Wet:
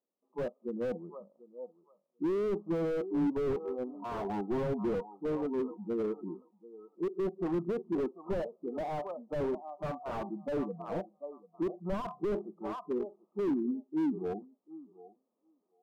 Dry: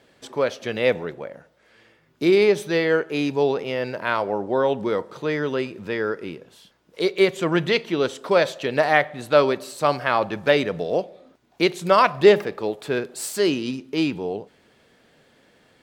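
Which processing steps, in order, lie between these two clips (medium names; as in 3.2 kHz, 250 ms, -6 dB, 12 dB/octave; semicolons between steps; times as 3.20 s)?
rattle on loud lows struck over -27 dBFS, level -11 dBFS; spectral noise reduction 24 dB; 2.40–3.98 s: waveshaping leveller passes 1; level rider gain up to 9 dB; brick-wall FIR band-pass 170–1300 Hz; distance through air 280 m; thinning echo 741 ms, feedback 19%, high-pass 820 Hz, level -12 dB; slew-rate limiter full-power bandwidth 38 Hz; trim -9 dB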